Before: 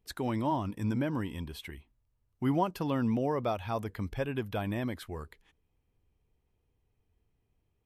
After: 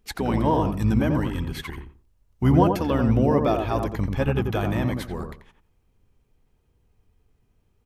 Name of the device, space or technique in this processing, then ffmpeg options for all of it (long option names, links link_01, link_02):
octave pedal: -filter_complex "[0:a]asettb=1/sr,asplit=3[link_01][link_02][link_03];[link_01]atrim=end=0.534[link_04];[link_02]atrim=start=0.53:end=1.19,asetpts=PTS-STARTPTS,afade=type=in:duration=0.004:curve=qsin,afade=type=out:start_time=0.656:duration=0.004:curve=qsin,highshelf=frequency=9500:gain=6[link_05];[link_03]atrim=start=1.186[link_06];[link_04][link_05]acrossfade=duration=0.004:curve1=hsin:curve2=qsin[link_07];[link_07][link_06]acrossfade=duration=0.004:curve1=qsin:curve2=hsin,asplit=2[link_08][link_09];[link_09]asetrate=22050,aresample=44100,atempo=2,volume=-3dB[link_10];[link_08][link_10]amix=inputs=2:normalize=0,asplit=2[link_11][link_12];[link_12]adelay=87,lowpass=frequency=1100:poles=1,volume=-3.5dB,asplit=2[link_13][link_14];[link_14]adelay=87,lowpass=frequency=1100:poles=1,volume=0.25,asplit=2[link_15][link_16];[link_16]adelay=87,lowpass=frequency=1100:poles=1,volume=0.25,asplit=2[link_17][link_18];[link_18]adelay=87,lowpass=frequency=1100:poles=1,volume=0.25[link_19];[link_11][link_13][link_15][link_17][link_19]amix=inputs=5:normalize=0,volume=7dB"